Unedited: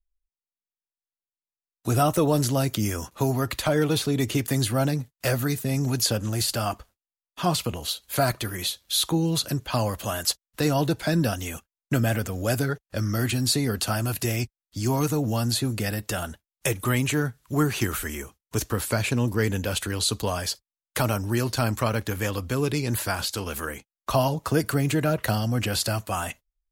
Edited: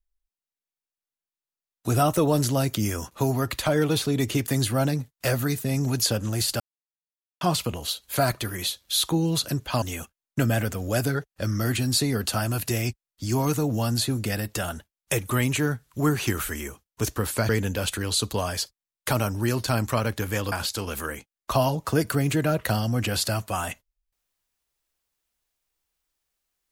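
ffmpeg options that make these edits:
-filter_complex "[0:a]asplit=6[a][b][c][d][e][f];[a]atrim=end=6.6,asetpts=PTS-STARTPTS,afade=t=out:st=6.596:d=0.004:c=hsin[g];[b]atrim=start=6.6:end=7.41,asetpts=PTS-STARTPTS,volume=0[h];[c]atrim=start=7.41:end=9.822,asetpts=PTS-STARTPTS,afade=t=in:d=0.004:c=hsin[i];[d]atrim=start=11.358:end=19.032[j];[e]atrim=start=19.378:end=22.412[k];[f]atrim=start=23.108[l];[g][h][i]concat=n=3:v=0:a=1[m];[m][j]acrossfade=d=0.004:c1=hsin:c2=hsin[n];[n][k]acrossfade=d=0.004:c1=hsin:c2=hsin[o];[o][l]acrossfade=d=0.004:c1=hsin:c2=hsin"

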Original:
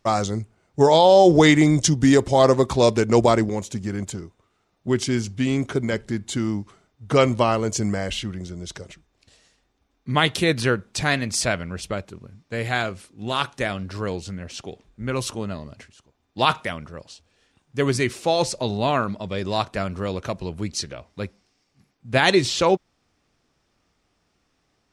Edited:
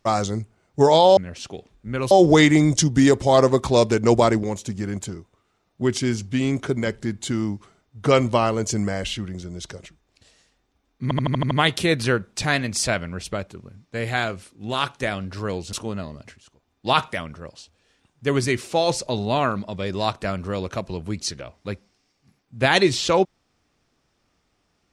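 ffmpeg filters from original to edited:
-filter_complex "[0:a]asplit=10[a][b][c][d][e][f][g][h][i][j];[a]atrim=end=1.172[k];[b]atrim=start=14.308:end=15.252[l];[c]atrim=start=1.168:end=10.172[m];[d]atrim=start=10.088:end=10.172[n];[e]atrim=start=10.088:end=10.172[o];[f]atrim=start=10.088:end=10.172[p];[g]atrim=start=10.088:end=10.172[q];[h]atrim=start=10.088:end=10.172[r];[i]atrim=start=10.088:end=14.312[s];[j]atrim=start=15.248[t];[k][l]acrossfade=d=0.004:c1=hsin:c2=hsin[u];[u][m]acrossfade=d=0.004:c1=hsin:c2=hsin[v];[v][n]acrossfade=d=0.004:c1=hsin:c2=hsin[w];[w][o]acrossfade=d=0.004:c1=hsin:c2=hsin[x];[x][p]acrossfade=d=0.004:c1=hsin:c2=hsin[y];[y][q]acrossfade=d=0.004:c1=hsin:c2=hsin[z];[z][r]acrossfade=d=0.004:c1=hsin:c2=hsin[aa];[aa][s]acrossfade=d=0.004:c1=hsin:c2=hsin[ab];[ab][t]acrossfade=d=0.004:c1=hsin:c2=hsin"

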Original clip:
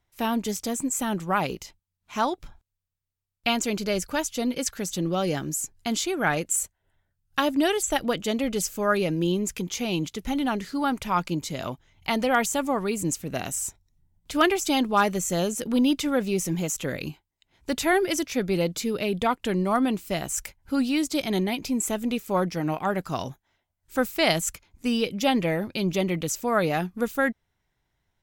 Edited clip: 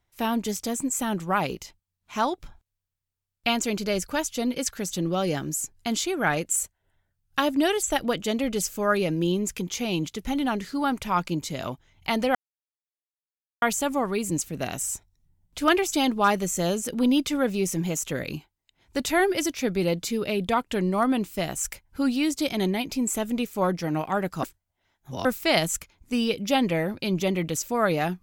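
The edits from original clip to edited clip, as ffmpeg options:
-filter_complex "[0:a]asplit=4[a][b][c][d];[a]atrim=end=12.35,asetpts=PTS-STARTPTS,afade=t=out:st=12.346:d=0.004:c=hsin,apad=pad_dur=1.27[e];[b]atrim=start=12.35:end=23.162,asetpts=PTS-STARTPTS,afade=t=in:d=0.004:c=hsin[f];[c]atrim=start=23.158:end=23.982,asetpts=PTS-STARTPTS,areverse[g];[d]atrim=start=23.978[h];[e][f]concat=n=2:v=0:a=1[i];[i][g]acrossfade=d=0.004:c1=hsin:c2=hsin[j];[j][h]acrossfade=d=0.004:c1=hsin:c2=hsin"

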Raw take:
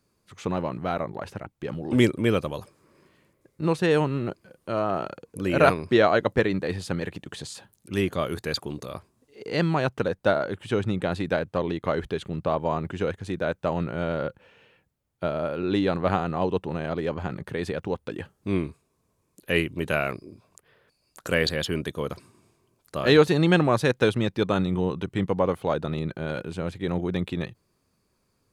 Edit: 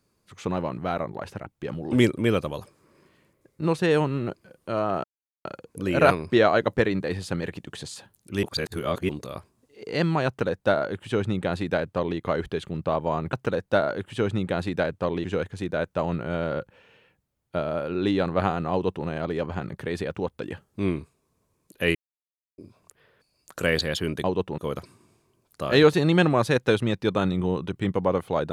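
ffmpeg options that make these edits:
-filter_complex "[0:a]asplit=10[a][b][c][d][e][f][g][h][i][j];[a]atrim=end=5.04,asetpts=PTS-STARTPTS,afade=t=out:st=5.036:d=0.004:c=hsin,apad=pad_dur=0.41[k];[b]atrim=start=5.04:end=8.022,asetpts=PTS-STARTPTS,afade=t=in:d=0.004:c=hsin[l];[c]atrim=start=8.018:end=8.682,asetpts=PTS-STARTPTS,areverse[m];[d]atrim=start=8.678:end=12.922[n];[e]atrim=start=9.858:end=11.772[o];[f]atrim=start=12.918:end=19.63,asetpts=PTS-STARTPTS,afade=t=out:st=6.708:d=0.004:c=hsin[p];[g]atrim=start=19.63:end=20.26,asetpts=PTS-STARTPTS,volume=0[q];[h]atrim=start=20.26:end=21.922,asetpts=PTS-STARTPTS,afade=t=in:d=0.004:c=hsin[r];[i]atrim=start=16.398:end=16.742[s];[j]atrim=start=21.918[t];[k][l]concat=n=2:v=0:a=1[u];[u][m]acrossfade=d=0.004:c1=hsin:c2=hsin[v];[v][n]acrossfade=d=0.004:c1=hsin:c2=hsin[w];[w][o]acrossfade=d=0.004:c1=hsin:c2=hsin[x];[p][q][r]concat=n=3:v=0:a=1[y];[x][y]acrossfade=d=0.004:c1=hsin:c2=hsin[z];[z][s]acrossfade=d=0.004:c1=hsin:c2=hsin[aa];[aa][t]acrossfade=d=0.004:c1=hsin:c2=hsin"

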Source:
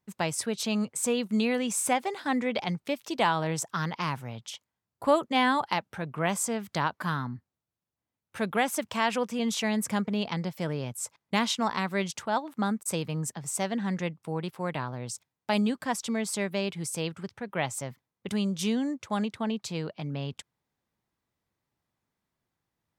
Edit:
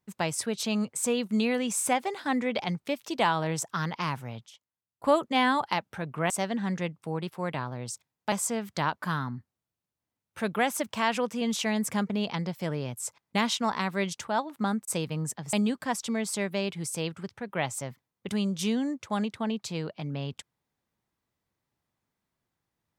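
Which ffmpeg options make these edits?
-filter_complex "[0:a]asplit=6[a][b][c][d][e][f];[a]atrim=end=4.462[g];[b]atrim=start=4.458:end=5.042,asetpts=PTS-STARTPTS,volume=-12dB[h];[c]atrim=start=5.038:end=6.302[i];[d]atrim=start=13.508:end=15.532[j];[e]atrim=start=6.298:end=13.512[k];[f]atrim=start=15.528[l];[g][h]acrossfade=d=0.004:c1=hsin:c2=hsin[m];[m][i]acrossfade=d=0.004:c1=hsin:c2=hsin[n];[n][j]acrossfade=d=0.004:c1=hsin:c2=hsin[o];[o][k]acrossfade=d=0.004:c1=hsin:c2=hsin[p];[p][l]acrossfade=d=0.004:c1=hsin:c2=hsin"

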